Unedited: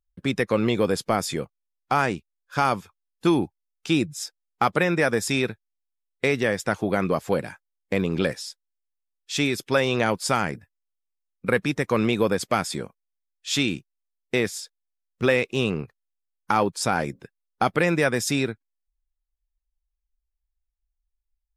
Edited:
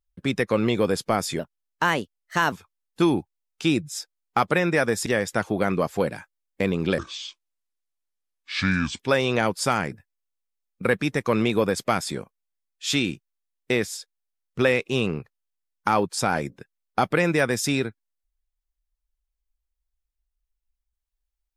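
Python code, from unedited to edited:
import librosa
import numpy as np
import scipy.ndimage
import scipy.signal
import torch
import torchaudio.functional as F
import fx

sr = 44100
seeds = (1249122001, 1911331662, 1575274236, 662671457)

y = fx.edit(x, sr, fx.speed_span(start_s=1.39, length_s=1.38, speed=1.22),
    fx.cut(start_s=5.31, length_s=1.07),
    fx.speed_span(start_s=8.3, length_s=1.33, speed=0.66), tone=tone)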